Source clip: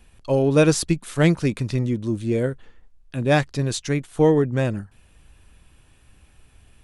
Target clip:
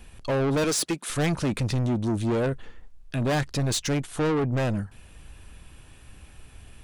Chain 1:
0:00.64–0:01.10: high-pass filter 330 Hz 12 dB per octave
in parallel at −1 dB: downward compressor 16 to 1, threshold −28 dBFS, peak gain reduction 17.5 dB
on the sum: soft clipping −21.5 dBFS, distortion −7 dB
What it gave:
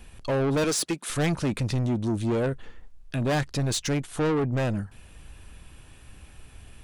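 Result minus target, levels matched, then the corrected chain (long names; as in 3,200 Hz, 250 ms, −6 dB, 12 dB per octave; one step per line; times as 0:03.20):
downward compressor: peak gain reduction +7 dB
0:00.64–0:01.10: high-pass filter 330 Hz 12 dB per octave
in parallel at −1 dB: downward compressor 16 to 1, threshold −20.5 dBFS, peak gain reduction 10.5 dB
on the sum: soft clipping −21.5 dBFS, distortion −6 dB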